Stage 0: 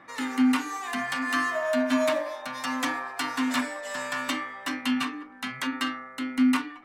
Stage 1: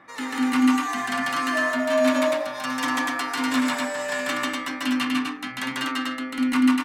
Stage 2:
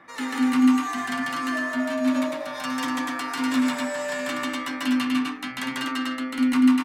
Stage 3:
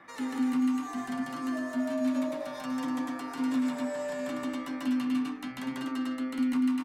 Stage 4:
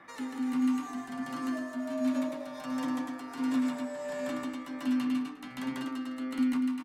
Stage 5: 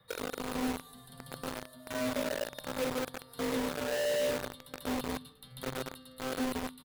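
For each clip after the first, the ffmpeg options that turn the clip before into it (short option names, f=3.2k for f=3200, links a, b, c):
-af "aecho=1:1:142.9|244.9:1|0.794"
-filter_complex "[0:a]acrossover=split=360[a][b];[b]acompressor=threshold=-27dB:ratio=6[c];[a][c]amix=inputs=2:normalize=0,asplit=2[d][e];[e]adelay=12,volume=-11dB[f];[d][f]amix=inputs=2:normalize=0"
-filter_complex "[0:a]acrossover=split=810|4500[a][b][c];[a]acompressor=threshold=-23dB:ratio=4[d];[b]acompressor=threshold=-44dB:ratio=4[e];[c]acompressor=threshold=-51dB:ratio=4[f];[d][e][f]amix=inputs=3:normalize=0,volume=-2.5dB"
-af "aecho=1:1:356:0.158,tremolo=f=1.4:d=0.44"
-filter_complex "[0:a]firequalizer=gain_entry='entry(120,0);entry(290,-19);entry(460,13);entry(670,-12);entry(950,-19);entry(2400,-27);entry(3700,-2);entry(6300,-27);entry(9700,0)':delay=0.05:min_phase=1,acrossover=split=190|870|1400[a][b][c][d];[b]acrusher=bits=6:mix=0:aa=0.000001[e];[a][e][c][d]amix=inputs=4:normalize=0,volume=7.5dB"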